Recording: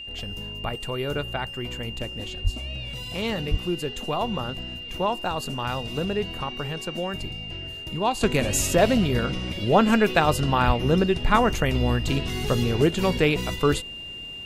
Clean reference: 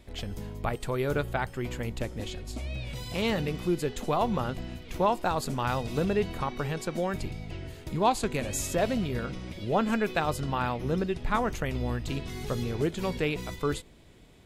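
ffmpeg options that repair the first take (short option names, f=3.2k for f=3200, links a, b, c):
-filter_complex "[0:a]bandreject=f=2.8k:w=30,asplit=3[a][b][c];[a]afade=t=out:st=2.43:d=0.02[d];[b]highpass=f=140:w=0.5412,highpass=f=140:w=1.3066,afade=t=in:st=2.43:d=0.02,afade=t=out:st=2.55:d=0.02[e];[c]afade=t=in:st=2.55:d=0.02[f];[d][e][f]amix=inputs=3:normalize=0,asplit=3[g][h][i];[g]afade=t=out:st=3.5:d=0.02[j];[h]highpass=f=140:w=0.5412,highpass=f=140:w=1.3066,afade=t=in:st=3.5:d=0.02,afade=t=out:st=3.62:d=0.02[k];[i]afade=t=in:st=3.62:d=0.02[l];[j][k][l]amix=inputs=3:normalize=0,asplit=3[m][n][o];[m]afade=t=out:st=10.66:d=0.02[p];[n]highpass=f=140:w=0.5412,highpass=f=140:w=1.3066,afade=t=in:st=10.66:d=0.02,afade=t=out:st=10.78:d=0.02[q];[o]afade=t=in:st=10.78:d=0.02[r];[p][q][r]amix=inputs=3:normalize=0,asetnsamples=n=441:p=0,asendcmd='8.21 volume volume -8dB',volume=0dB"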